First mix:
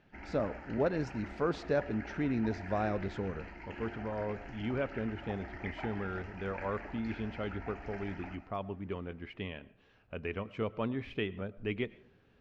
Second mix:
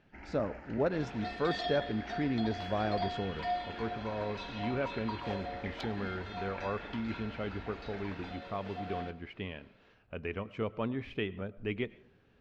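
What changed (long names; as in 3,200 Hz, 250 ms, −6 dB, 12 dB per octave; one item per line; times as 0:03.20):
first sound: send −9.5 dB
second sound: unmuted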